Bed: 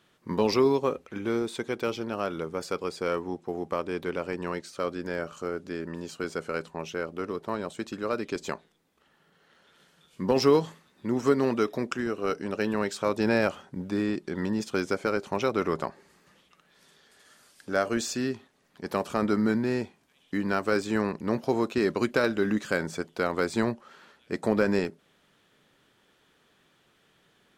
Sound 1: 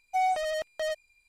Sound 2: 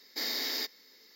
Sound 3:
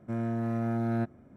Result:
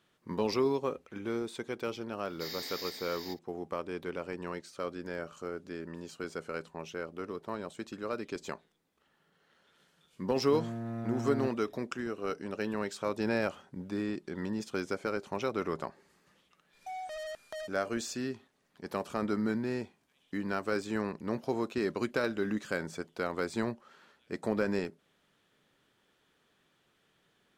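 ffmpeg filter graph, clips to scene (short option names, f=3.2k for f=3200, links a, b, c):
-filter_complex "[0:a]volume=-6.5dB[a];[2:a]aecho=1:1:437:0.596[b];[1:a]acompressor=threshold=-41dB:ratio=6:attack=3.2:release=140:knee=1:detection=peak[c];[b]atrim=end=1.15,asetpts=PTS-STARTPTS,volume=-8dB,afade=t=in:d=0.004:c=hsin,afade=t=out:st=1.146:d=0.004:c=hsin,adelay=2240[d];[3:a]atrim=end=1.36,asetpts=PTS-STARTPTS,volume=-7dB,afade=t=in:d=0.004:c=hsin,afade=t=out:st=1.356:d=0.004:c=hsin,adelay=10430[e];[c]atrim=end=1.28,asetpts=PTS-STARTPTS,afade=t=in:d=0.004:c=hsin,afade=t=out:st=1.276:d=0.004:c=hsin,adelay=16730[f];[a][d][e][f]amix=inputs=4:normalize=0"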